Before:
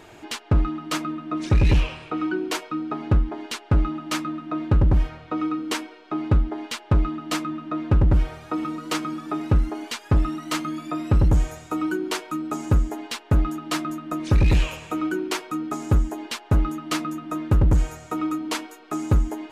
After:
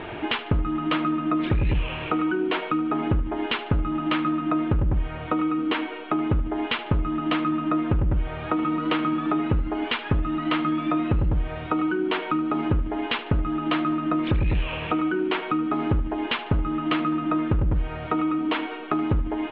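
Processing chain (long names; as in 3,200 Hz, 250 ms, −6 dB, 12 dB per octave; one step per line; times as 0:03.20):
Butterworth low-pass 3,400 Hz 48 dB per octave
in parallel at +1 dB: brickwall limiter −23 dBFS, peak gain reduction 11 dB
on the sum: downward compressor, threshold −27 dBFS, peak gain reduction 14 dB
repeating echo 75 ms, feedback 37%, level −15 dB
level +5.5 dB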